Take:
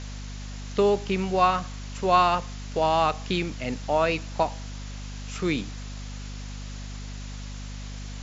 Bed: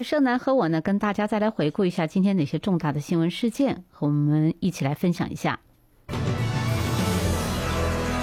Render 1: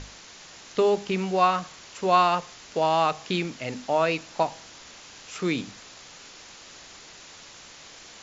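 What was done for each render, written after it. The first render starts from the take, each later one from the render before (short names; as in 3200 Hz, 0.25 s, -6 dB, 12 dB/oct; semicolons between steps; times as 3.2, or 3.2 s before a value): notches 50/100/150/200/250 Hz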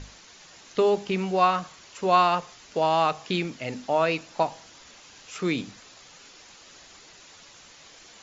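denoiser 6 dB, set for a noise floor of -47 dBFS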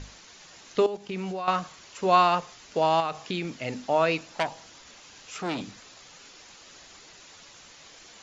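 0.86–1.48 level quantiser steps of 16 dB; 3–3.61 compressor 2.5:1, threshold -27 dBFS; 4.34–5.61 core saturation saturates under 2100 Hz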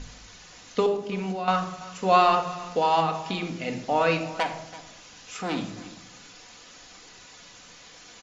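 echo 0.333 s -18 dB; shoebox room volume 2000 m³, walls furnished, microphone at 1.9 m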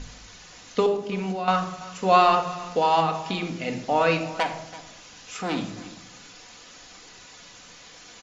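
gain +1.5 dB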